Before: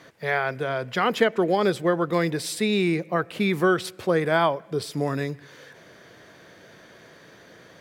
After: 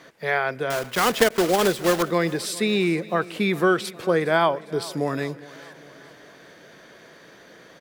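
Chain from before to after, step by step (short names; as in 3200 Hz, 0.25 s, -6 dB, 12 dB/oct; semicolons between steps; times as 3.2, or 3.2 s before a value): 0.7–2.04 block floating point 3-bit; bell 95 Hz -10 dB 0.93 oct; feedback echo 0.408 s, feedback 54%, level -20 dB; gain +1.5 dB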